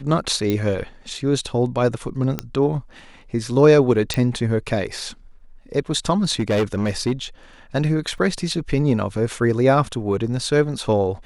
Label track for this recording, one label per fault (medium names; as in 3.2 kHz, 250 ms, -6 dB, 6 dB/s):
0.500000	0.500000	pop -10 dBFS
2.390000	2.390000	pop -8 dBFS
4.140000	4.140000	pop -7 dBFS
6.400000	7.120000	clipped -15 dBFS
8.180000	8.180000	dropout 2.9 ms